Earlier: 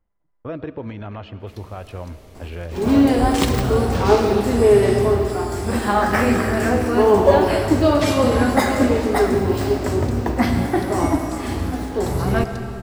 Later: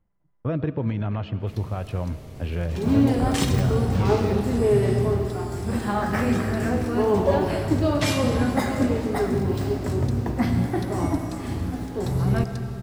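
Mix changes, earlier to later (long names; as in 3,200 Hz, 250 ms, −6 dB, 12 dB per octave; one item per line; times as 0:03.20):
second sound −8.5 dB
master: add parametric band 140 Hz +11.5 dB 1.2 octaves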